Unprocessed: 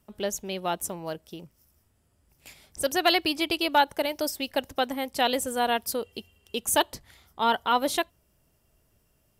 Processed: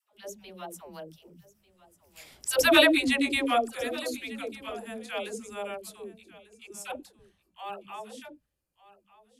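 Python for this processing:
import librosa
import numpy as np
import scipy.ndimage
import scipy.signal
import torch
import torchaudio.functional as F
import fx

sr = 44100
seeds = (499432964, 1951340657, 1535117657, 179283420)

p1 = fx.pitch_glide(x, sr, semitones=-2.5, runs='ending unshifted')
p2 = fx.doppler_pass(p1, sr, speed_mps=42, closest_m=17.0, pass_at_s=2.68)
p3 = fx.hum_notches(p2, sr, base_hz=50, count=4)
p4 = fx.dispersion(p3, sr, late='lows', ms=146.0, hz=410.0)
p5 = p4 + fx.echo_single(p4, sr, ms=1195, db=-19.0, dry=0)
y = p5 * librosa.db_to_amplitude(6.0)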